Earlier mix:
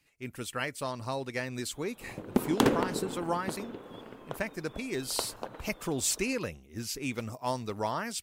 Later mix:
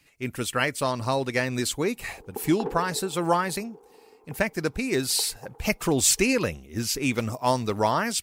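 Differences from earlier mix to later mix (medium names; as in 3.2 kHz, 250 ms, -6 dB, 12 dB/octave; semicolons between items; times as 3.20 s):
speech +9.0 dB; background: add two resonant band-passes 600 Hz, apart 0.84 oct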